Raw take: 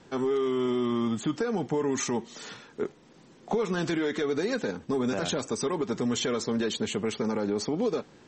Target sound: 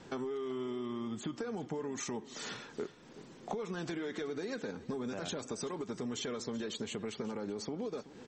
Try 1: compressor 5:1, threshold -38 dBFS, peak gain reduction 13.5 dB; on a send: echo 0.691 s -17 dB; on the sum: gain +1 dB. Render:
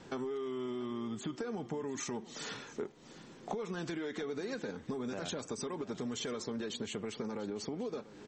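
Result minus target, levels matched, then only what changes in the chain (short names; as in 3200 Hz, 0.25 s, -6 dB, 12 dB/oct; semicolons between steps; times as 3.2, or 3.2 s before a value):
echo 0.312 s late
change: echo 0.379 s -17 dB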